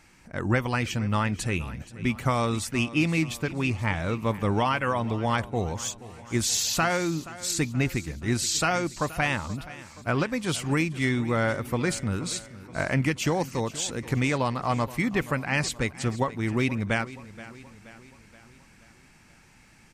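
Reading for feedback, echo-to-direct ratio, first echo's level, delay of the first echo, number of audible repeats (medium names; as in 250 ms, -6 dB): 53%, -15.5 dB, -17.0 dB, 476 ms, 4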